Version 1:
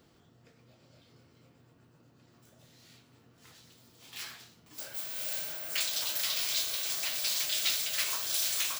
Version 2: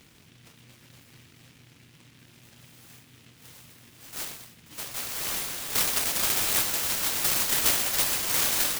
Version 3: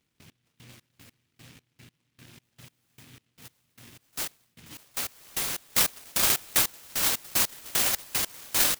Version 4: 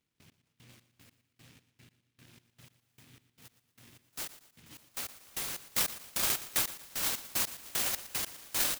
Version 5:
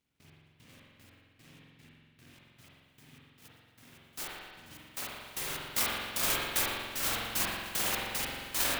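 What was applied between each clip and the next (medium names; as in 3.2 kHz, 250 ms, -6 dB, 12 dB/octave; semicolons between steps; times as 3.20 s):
delay time shaken by noise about 2.5 kHz, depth 0.47 ms; trim +7.5 dB
trance gate "..x...xx" 151 bpm -24 dB; trim +3 dB
feedback delay 117 ms, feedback 37%, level -15 dB; trim -7 dB
reverberation RT60 1.6 s, pre-delay 45 ms, DRR -5 dB; trim -1 dB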